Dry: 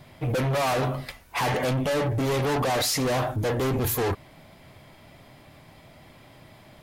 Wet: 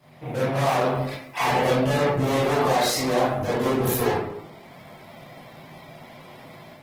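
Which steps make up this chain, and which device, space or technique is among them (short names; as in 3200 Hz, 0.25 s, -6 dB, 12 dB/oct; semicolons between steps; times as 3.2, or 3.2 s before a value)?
far-field microphone of a smart speaker (reverb RT60 0.75 s, pre-delay 21 ms, DRR -8.5 dB; HPF 140 Hz 24 dB/oct; AGC gain up to 6 dB; gain -7.5 dB; Opus 16 kbps 48000 Hz)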